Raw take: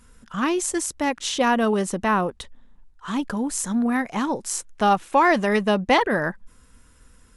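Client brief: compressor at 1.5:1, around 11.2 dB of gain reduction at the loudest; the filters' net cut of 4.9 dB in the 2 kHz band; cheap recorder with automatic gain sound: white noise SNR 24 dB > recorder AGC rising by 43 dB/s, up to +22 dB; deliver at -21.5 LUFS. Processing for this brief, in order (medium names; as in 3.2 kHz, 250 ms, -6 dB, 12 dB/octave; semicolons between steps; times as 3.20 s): peaking EQ 2 kHz -6 dB; compression 1.5:1, threshold -47 dBFS; white noise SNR 24 dB; recorder AGC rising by 43 dB/s, up to +22 dB; trim +11 dB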